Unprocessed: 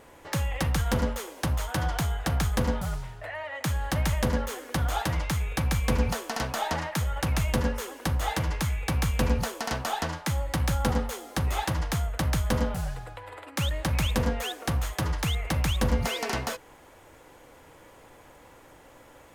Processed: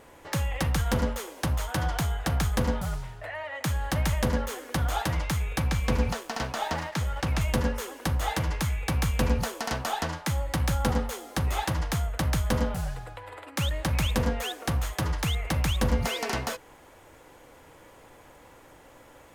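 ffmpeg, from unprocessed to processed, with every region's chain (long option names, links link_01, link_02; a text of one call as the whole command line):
ffmpeg -i in.wav -filter_complex "[0:a]asettb=1/sr,asplit=3[link_01][link_02][link_03];[link_01]atrim=end=5.684[link_04];[link_02]atrim=start=5.68:end=7.41,asetpts=PTS-STARTPTS,afade=type=in:duration=0.004:curve=qsin,afade=type=out:start_time=1.726:duration=0.004:curve=qsin,acrossover=split=7400[link_05][link_06];[link_06]acompressor=threshold=-46dB:ratio=4:attack=1:release=60[link_07];[link_05][link_07]amix=inputs=2:normalize=0,aeval=exprs='sgn(val(0))*max(abs(val(0))-0.00473,0)':channel_layout=same[link_08];[link_03]atrim=start=7.406[link_09];[link_04][link_08]acrossfade=duration=0.004:curve1=hsin:curve2=qsin[link_10];[link_10][link_09]acrossfade=duration=0.004:curve1=qsin:curve2=hsin" out.wav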